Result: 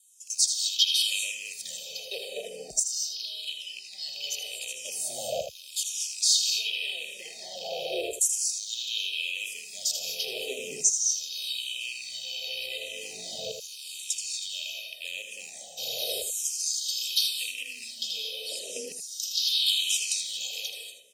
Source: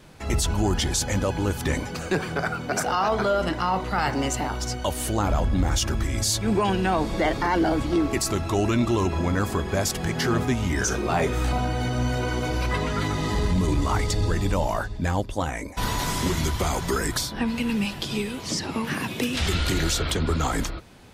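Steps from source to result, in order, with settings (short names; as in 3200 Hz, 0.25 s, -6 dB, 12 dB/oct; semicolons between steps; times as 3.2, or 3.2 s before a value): rattling part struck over -26 dBFS, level -18 dBFS; 9.02–11.86 bell 1700 Hz -10.5 dB 0.23 oct; non-linear reverb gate 0.26 s rising, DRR 4.5 dB; LFO high-pass saw down 0.37 Hz 570–7500 Hz; frequency shift +25 Hz; elliptic band-stop 500–3200 Hz, stop band 70 dB; comb 1.6 ms, depth 80%; echo 80 ms -8 dB; endless phaser -0.86 Hz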